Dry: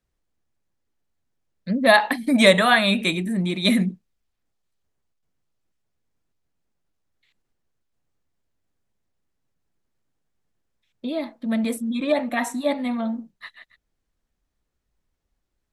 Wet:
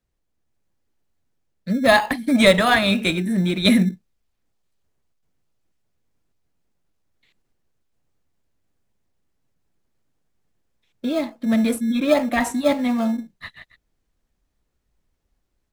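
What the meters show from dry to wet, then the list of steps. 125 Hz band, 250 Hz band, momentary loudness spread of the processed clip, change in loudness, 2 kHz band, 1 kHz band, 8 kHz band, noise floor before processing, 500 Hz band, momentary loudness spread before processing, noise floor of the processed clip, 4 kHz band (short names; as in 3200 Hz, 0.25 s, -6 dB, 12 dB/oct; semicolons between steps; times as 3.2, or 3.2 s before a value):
+3.0 dB, +3.0 dB, 10 LU, +1.5 dB, 0.0 dB, +0.5 dB, +2.0 dB, -78 dBFS, +1.5 dB, 14 LU, -74 dBFS, +0.5 dB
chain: AGC gain up to 4 dB; in parallel at -12 dB: sample-and-hold 23×; on the sum: gain -1 dB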